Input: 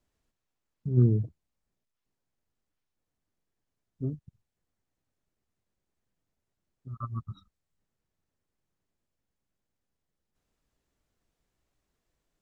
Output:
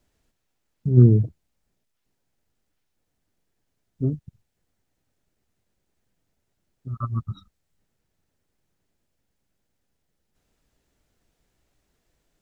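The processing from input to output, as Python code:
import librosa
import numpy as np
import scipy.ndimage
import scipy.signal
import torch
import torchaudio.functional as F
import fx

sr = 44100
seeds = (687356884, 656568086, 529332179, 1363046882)

y = fx.peak_eq(x, sr, hz=1100.0, db=-4.5, octaves=0.31)
y = y * librosa.db_to_amplitude(8.5)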